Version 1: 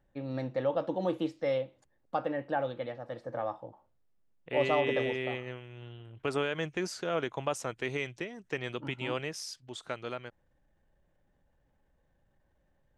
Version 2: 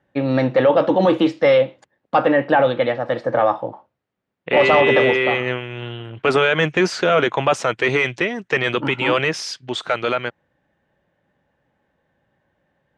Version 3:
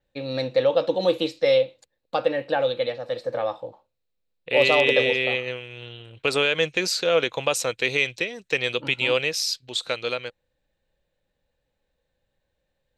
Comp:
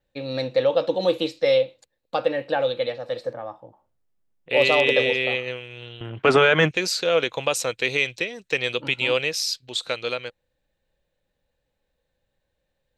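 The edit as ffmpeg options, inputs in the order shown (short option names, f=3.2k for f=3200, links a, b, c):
-filter_complex "[2:a]asplit=3[a][b][c];[a]atrim=end=3.332[d];[0:a]atrim=start=3.328:end=4.492[e];[b]atrim=start=4.488:end=6.012[f];[1:a]atrim=start=6.008:end=6.712[g];[c]atrim=start=6.708[h];[d][e]acrossfade=d=0.004:c1=hsin:c2=hsin[i];[i][f]acrossfade=d=0.004:c1=hsin:c2=hsin[j];[j][g]acrossfade=d=0.004:c1=hsin:c2=hsin[k];[k][h]acrossfade=d=0.004:c1=hsin:c2=hsin"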